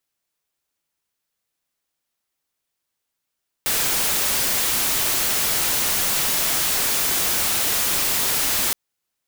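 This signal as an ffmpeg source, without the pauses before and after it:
-f lavfi -i "anoisesrc=c=white:a=0.154:d=5.07:r=44100:seed=1"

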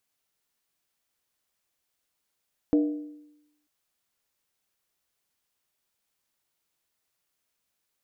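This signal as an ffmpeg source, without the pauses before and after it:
-f lavfi -i "aevalsrc='0.15*pow(10,-3*t/0.9)*sin(2*PI*298*t)+0.0531*pow(10,-3*t/0.713)*sin(2*PI*475*t)+0.0188*pow(10,-3*t/0.616)*sin(2*PI*636.5*t)+0.00668*pow(10,-3*t/0.594)*sin(2*PI*684.2*t)+0.00237*pow(10,-3*t/0.553)*sin(2*PI*790.6*t)':d=0.94:s=44100"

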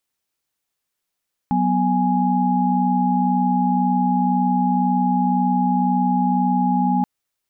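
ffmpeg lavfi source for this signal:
-f lavfi -i "aevalsrc='0.1*(sin(2*PI*185*t)+sin(2*PI*246.94*t)+sin(2*PI*830.61*t))':d=5.53:s=44100"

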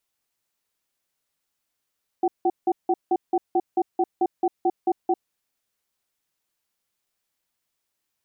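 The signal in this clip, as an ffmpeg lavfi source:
-f lavfi -i "aevalsrc='0.1*(sin(2*PI*351*t)+sin(2*PI*757*t))*clip(min(mod(t,0.22),0.05-mod(t,0.22))/0.005,0,1)':d=2.95:s=44100"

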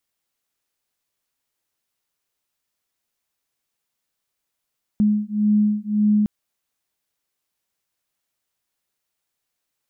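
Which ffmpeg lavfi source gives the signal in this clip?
-f lavfi -i "aevalsrc='0.112*(sin(2*PI*209*t)+sin(2*PI*210.8*t))':d=1.26:s=44100"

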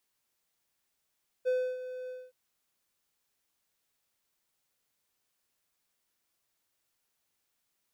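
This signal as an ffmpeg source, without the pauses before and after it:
-f lavfi -i "aevalsrc='0.075*(1-4*abs(mod(507*t+0.25,1)-0.5))':d=0.869:s=44100,afade=t=in:d=0.028,afade=t=out:st=0.028:d=0.293:silence=0.224,afade=t=out:st=0.64:d=0.229"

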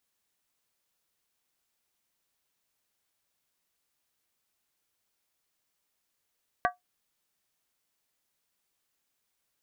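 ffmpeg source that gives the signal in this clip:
-f lavfi -i "aevalsrc='0.1*pow(10,-3*t/0.15)*sin(2*PI*721*t)+0.075*pow(10,-3*t/0.119)*sin(2*PI*1149.3*t)+0.0562*pow(10,-3*t/0.103)*sin(2*PI*1540.1*t)+0.0422*pow(10,-3*t/0.099)*sin(2*PI*1655.4*t)+0.0316*pow(10,-3*t/0.092)*sin(2*PI*1912.8*t)':d=0.63:s=44100"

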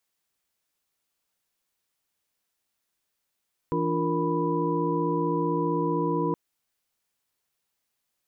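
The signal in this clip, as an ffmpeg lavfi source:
-f lavfi -i "aevalsrc='0.0335*(sin(2*PI*164.81*t)+sin(2*PI*293.66*t)+sin(2*PI*349.23*t)+sin(2*PI*466.16*t)+sin(2*PI*987.77*t))':d=2.62:s=44100"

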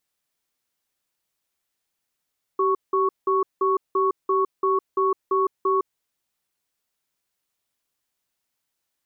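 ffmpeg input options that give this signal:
-f lavfi -i "aevalsrc='0.0944*(sin(2*PI*385*t)+sin(2*PI*1110*t))*clip(min(mod(t,0.34),0.16-mod(t,0.34))/0.005,0,1)':d=3.32:s=44100"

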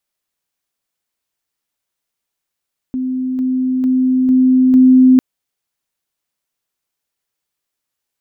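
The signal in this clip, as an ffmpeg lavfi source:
-f lavfi -i "aevalsrc='pow(10,(-16.5+3*floor(t/0.45))/20)*sin(2*PI*257*t)':d=2.25:s=44100"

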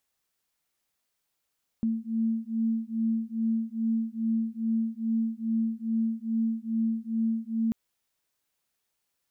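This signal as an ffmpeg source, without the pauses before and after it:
-f lavfi -i "aevalsrc='0.0376*(sin(2*PI*224*t)+sin(2*PI*226.4*t))':d=5.89:s=44100"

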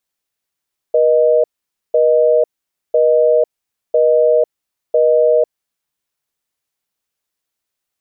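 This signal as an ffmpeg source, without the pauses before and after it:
-f lavfi -i "aevalsrc='0.266*(sin(2*PI*480*t)+sin(2*PI*620*t))*clip(min(mod(t,1),0.5-mod(t,1))/0.005,0,1)':d=4.59:s=44100"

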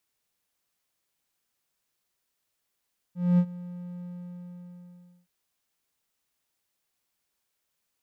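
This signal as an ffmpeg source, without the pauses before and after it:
-f lavfi -i "aevalsrc='0.2*(1-4*abs(mod(177*t+0.25,1)-0.5))':d=2.12:s=44100,afade=t=in:d=0.234,afade=t=out:st=0.234:d=0.067:silence=0.1,afade=t=out:st=0.88:d=1.24"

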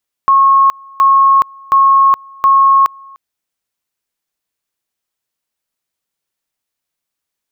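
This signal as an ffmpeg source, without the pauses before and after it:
-f lavfi -i "aevalsrc='pow(10,(-5-28*gte(mod(t,0.72),0.42))/20)*sin(2*PI*1090*t)':d=2.88:s=44100"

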